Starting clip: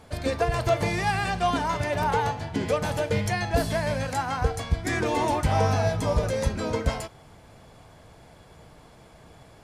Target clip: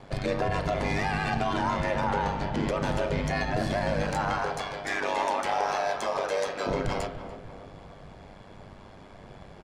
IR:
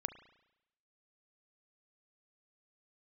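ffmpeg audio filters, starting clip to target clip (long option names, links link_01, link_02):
-filter_complex "[0:a]asettb=1/sr,asplit=3[link_01][link_02][link_03];[link_01]atrim=end=4.384[link_04];[link_02]atrim=start=4.38:end=6.67,asetpts=PTS-STARTPTS,afade=type=in:duration=0.004:curve=qsin,afade=type=out:start_time=2.286:duration=0.004:curve=qsin,highpass=570[link_05];[link_03]atrim=start=6.666[link_06];[link_04][link_05]acrossfade=duration=0.004:curve1=hsin:curve2=qsin[link_07];[link_07][link_06]acrossfade=duration=0.004:curve1=qsin:curve2=hsin,alimiter=limit=-22dB:level=0:latency=1:release=46,adynamicsmooth=sensitivity=4:basefreq=5600,aeval=exprs='val(0)*sin(2*PI*49*n/s)':channel_layout=same,asplit=2[link_08][link_09];[link_09]adelay=290,lowpass=frequency=1500:poles=1,volume=-10.5dB,asplit=2[link_10][link_11];[link_11]adelay=290,lowpass=frequency=1500:poles=1,volume=0.53,asplit=2[link_12][link_13];[link_13]adelay=290,lowpass=frequency=1500:poles=1,volume=0.53,asplit=2[link_14][link_15];[link_15]adelay=290,lowpass=frequency=1500:poles=1,volume=0.53,asplit=2[link_16][link_17];[link_17]adelay=290,lowpass=frequency=1500:poles=1,volume=0.53,asplit=2[link_18][link_19];[link_19]adelay=290,lowpass=frequency=1500:poles=1,volume=0.53[link_20];[link_08][link_10][link_12][link_14][link_16][link_18][link_20]amix=inputs=7:normalize=0[link_21];[1:a]atrim=start_sample=2205,asetrate=48510,aresample=44100[link_22];[link_21][link_22]afir=irnorm=-1:irlink=0,volume=7.5dB"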